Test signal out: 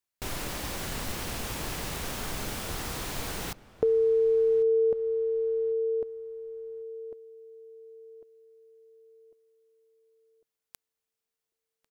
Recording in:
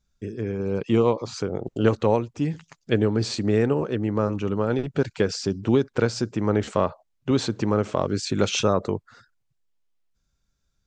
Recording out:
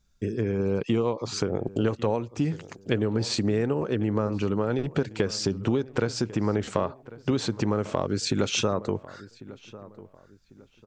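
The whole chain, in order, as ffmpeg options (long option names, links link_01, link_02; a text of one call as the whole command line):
ffmpeg -i in.wav -filter_complex "[0:a]acompressor=threshold=-27dB:ratio=4,asplit=2[link_01][link_02];[link_02]adelay=1097,lowpass=frequency=2100:poles=1,volume=-18dB,asplit=2[link_03][link_04];[link_04]adelay=1097,lowpass=frequency=2100:poles=1,volume=0.35,asplit=2[link_05][link_06];[link_06]adelay=1097,lowpass=frequency=2100:poles=1,volume=0.35[link_07];[link_01][link_03][link_05][link_07]amix=inputs=4:normalize=0,volume=4.5dB" out.wav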